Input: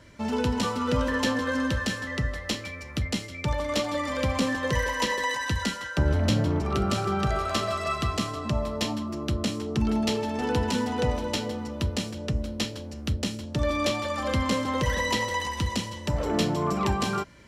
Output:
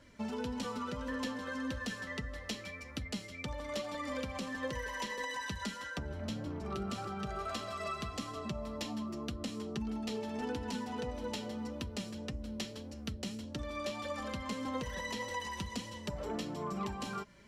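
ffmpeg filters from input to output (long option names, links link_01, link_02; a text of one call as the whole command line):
ffmpeg -i in.wav -af "acompressor=threshold=-28dB:ratio=6,flanger=delay=3.5:depth=1.9:regen=38:speed=1.7:shape=triangular,volume=-3.5dB" out.wav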